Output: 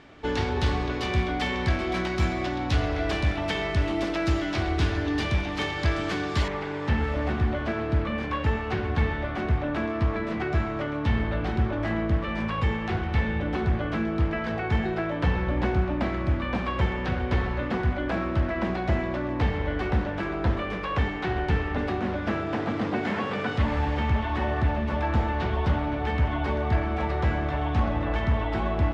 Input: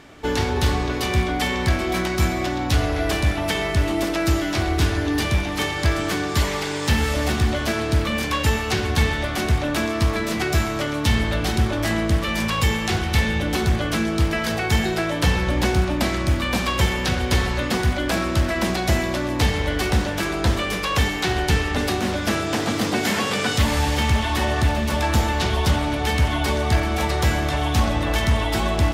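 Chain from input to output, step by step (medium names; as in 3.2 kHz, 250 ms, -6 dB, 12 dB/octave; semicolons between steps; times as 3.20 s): low-pass 4.3 kHz 12 dB/octave, from 6.48 s 1.9 kHz; trim -4.5 dB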